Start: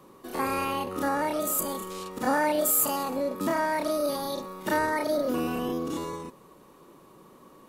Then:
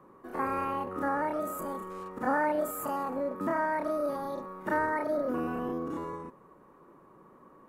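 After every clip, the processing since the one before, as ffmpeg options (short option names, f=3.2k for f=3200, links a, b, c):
-af "highshelf=f=2.4k:t=q:w=1.5:g=-13.5,volume=-4dB"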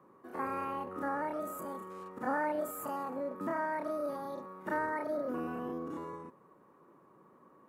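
-af "highpass=91,volume=-5dB"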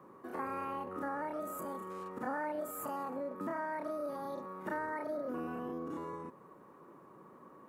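-af "acompressor=threshold=-47dB:ratio=2,volume=5dB"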